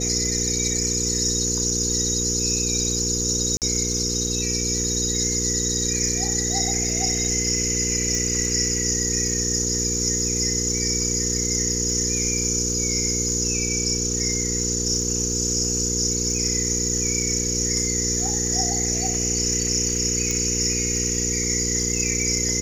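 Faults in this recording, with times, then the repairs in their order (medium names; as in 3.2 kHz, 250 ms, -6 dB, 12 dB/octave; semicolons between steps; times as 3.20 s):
crackle 58 per s -31 dBFS
hum 60 Hz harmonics 8 -28 dBFS
3.57–3.62 s: dropout 48 ms
8.15 s: pop
20.31 s: pop -11 dBFS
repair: de-click; de-hum 60 Hz, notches 8; interpolate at 3.57 s, 48 ms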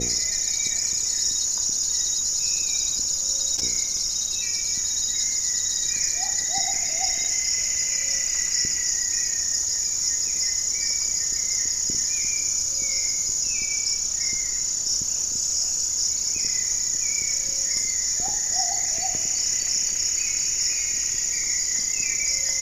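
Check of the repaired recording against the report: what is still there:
nothing left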